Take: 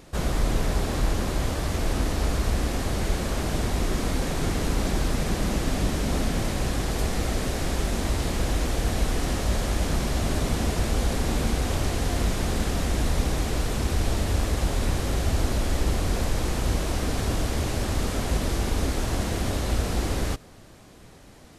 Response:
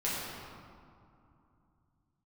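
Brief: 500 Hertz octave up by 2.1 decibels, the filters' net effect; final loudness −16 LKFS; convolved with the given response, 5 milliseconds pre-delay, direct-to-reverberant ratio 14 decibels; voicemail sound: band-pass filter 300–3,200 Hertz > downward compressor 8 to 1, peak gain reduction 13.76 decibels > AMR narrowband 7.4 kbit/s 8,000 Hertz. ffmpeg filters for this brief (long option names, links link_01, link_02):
-filter_complex "[0:a]equalizer=frequency=500:width_type=o:gain=3.5,asplit=2[link_01][link_02];[1:a]atrim=start_sample=2205,adelay=5[link_03];[link_02][link_03]afir=irnorm=-1:irlink=0,volume=-21.5dB[link_04];[link_01][link_04]amix=inputs=2:normalize=0,highpass=300,lowpass=3200,acompressor=threshold=-40dB:ratio=8,volume=29.5dB" -ar 8000 -c:a libopencore_amrnb -b:a 7400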